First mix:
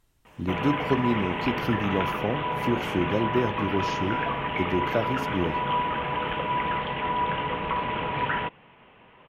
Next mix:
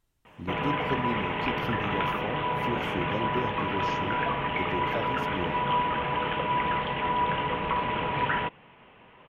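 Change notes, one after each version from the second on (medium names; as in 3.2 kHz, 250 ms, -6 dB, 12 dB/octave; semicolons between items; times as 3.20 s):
speech -7.5 dB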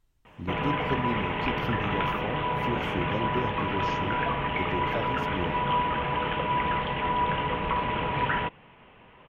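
speech: add peaking EQ 11 kHz -4 dB 0.66 oct; master: add bass shelf 84 Hz +8 dB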